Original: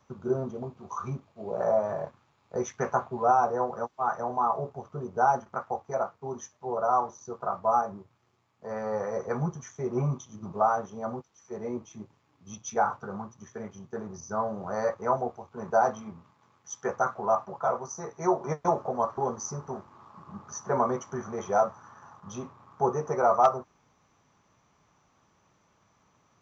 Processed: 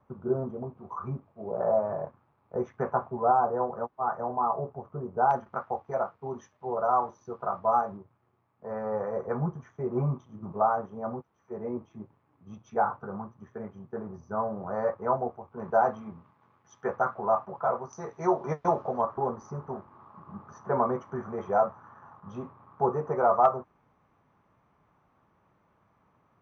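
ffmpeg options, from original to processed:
ffmpeg -i in.wav -af "asetnsamples=nb_out_samples=441:pad=0,asendcmd='5.31 lowpass f 2600;7.97 lowpass f 1500;15.6 lowpass f 2100;17.93 lowpass f 3800;19.01 lowpass f 1800',lowpass=1300" out.wav

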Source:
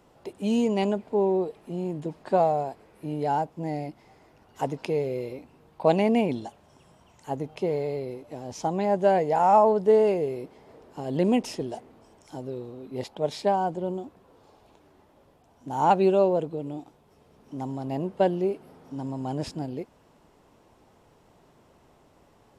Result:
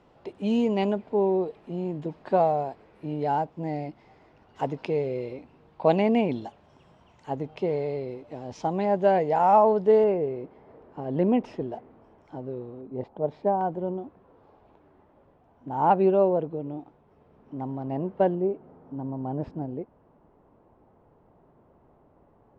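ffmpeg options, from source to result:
ffmpeg -i in.wav -af "asetnsamples=nb_out_samples=441:pad=0,asendcmd='10.04 lowpass f 1800;12.81 lowpass f 1000;13.61 lowpass f 1800;18.35 lowpass f 1100',lowpass=3900" out.wav

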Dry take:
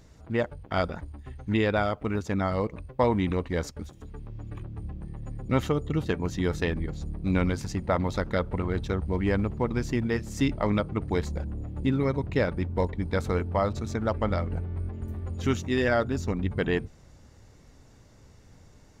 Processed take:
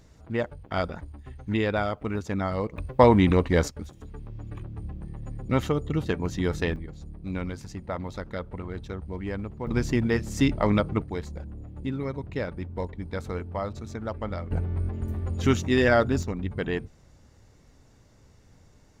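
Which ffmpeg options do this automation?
ffmpeg -i in.wav -af "asetnsamples=nb_out_samples=441:pad=0,asendcmd='2.78 volume volume 7dB;3.68 volume volume 0.5dB;6.76 volume volume -7dB;9.67 volume volume 3dB;11.02 volume volume -5.5dB;14.51 volume volume 4dB;16.23 volume volume -2.5dB',volume=-1dB" out.wav

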